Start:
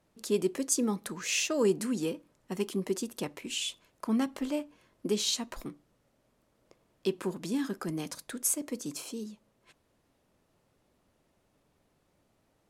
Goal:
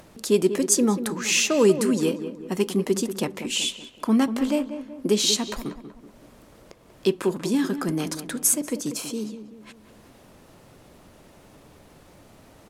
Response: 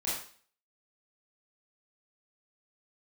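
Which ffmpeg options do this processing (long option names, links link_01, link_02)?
-filter_complex "[0:a]acompressor=mode=upward:threshold=-48dB:ratio=2.5,asplit=2[link_01][link_02];[link_02]adelay=189,lowpass=frequency=1700:poles=1,volume=-10dB,asplit=2[link_03][link_04];[link_04]adelay=189,lowpass=frequency=1700:poles=1,volume=0.49,asplit=2[link_05][link_06];[link_06]adelay=189,lowpass=frequency=1700:poles=1,volume=0.49,asplit=2[link_07][link_08];[link_08]adelay=189,lowpass=frequency=1700:poles=1,volume=0.49,asplit=2[link_09][link_10];[link_10]adelay=189,lowpass=frequency=1700:poles=1,volume=0.49[link_11];[link_03][link_05][link_07][link_09][link_11]amix=inputs=5:normalize=0[link_12];[link_01][link_12]amix=inputs=2:normalize=0,volume=8.5dB"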